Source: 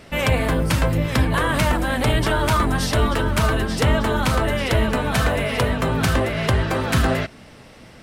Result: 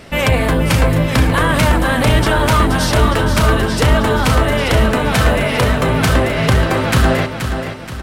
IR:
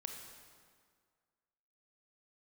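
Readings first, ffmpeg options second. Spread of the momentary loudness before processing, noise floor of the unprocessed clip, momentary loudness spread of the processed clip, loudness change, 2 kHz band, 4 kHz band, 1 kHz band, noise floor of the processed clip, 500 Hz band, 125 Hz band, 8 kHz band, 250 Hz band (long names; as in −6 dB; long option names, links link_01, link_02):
2 LU, −45 dBFS, 2 LU, +6.0 dB, +6.0 dB, +6.0 dB, +6.0 dB, −25 dBFS, +6.0 dB, +6.0 dB, +6.0 dB, +6.0 dB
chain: -af "acontrast=83,aecho=1:1:477|954|1431|1908|2385:0.398|0.175|0.0771|0.0339|0.0149,volume=-1dB"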